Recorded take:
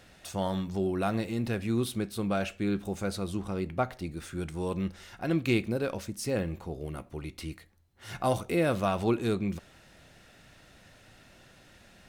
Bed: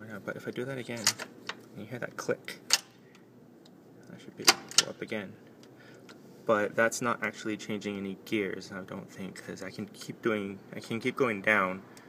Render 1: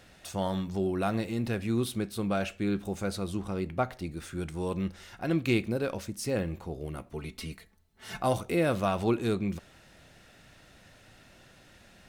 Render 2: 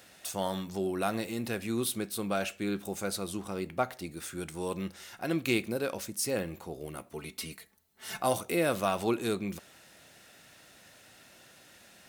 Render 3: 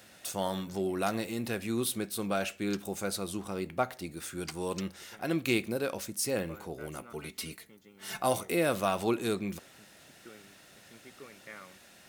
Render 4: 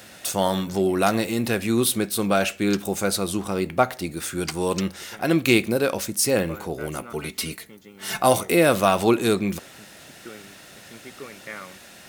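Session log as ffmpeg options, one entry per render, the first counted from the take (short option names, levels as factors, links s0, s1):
-filter_complex "[0:a]asettb=1/sr,asplit=3[s0][s1][s2];[s0]atrim=end=7.134[s3];[s1]atrim=start=7.13:end=8.2,asetpts=PTS-STARTPTS,afade=t=in:d=0.004:c=qsin,afade=t=out:st=1.066:d=0.004:c=qsin,aecho=1:1:4.6:0.75,atrim=end_sample=47187[s4];[s2]atrim=start=8.196[s5];[s3][s4]acrossfade=d=0.004:c1=hsin:c2=qsin[s6];[s6][s5]acrossfade=d=0.004:c1=qsin:c2=hsin"
-af "highpass=f=270:p=1,highshelf=f=7600:g=12"
-filter_complex "[1:a]volume=0.075[s0];[0:a][s0]amix=inputs=2:normalize=0"
-af "volume=3.35"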